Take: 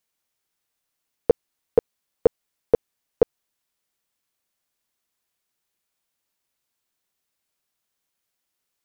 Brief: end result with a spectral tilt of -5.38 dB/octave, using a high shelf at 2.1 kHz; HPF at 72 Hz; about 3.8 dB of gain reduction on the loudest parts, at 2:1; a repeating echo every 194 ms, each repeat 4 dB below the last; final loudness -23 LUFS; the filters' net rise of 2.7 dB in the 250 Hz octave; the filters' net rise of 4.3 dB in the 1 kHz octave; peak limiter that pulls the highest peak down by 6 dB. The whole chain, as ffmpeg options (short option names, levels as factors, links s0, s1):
-af "highpass=72,equalizer=f=250:t=o:g=3.5,equalizer=f=1000:t=o:g=6.5,highshelf=f=2100:g=-4,acompressor=threshold=0.158:ratio=2,alimiter=limit=0.282:level=0:latency=1,aecho=1:1:194|388|582|776|970|1164|1358|1552|1746:0.631|0.398|0.25|0.158|0.0994|0.0626|0.0394|0.0249|0.0157,volume=2.66"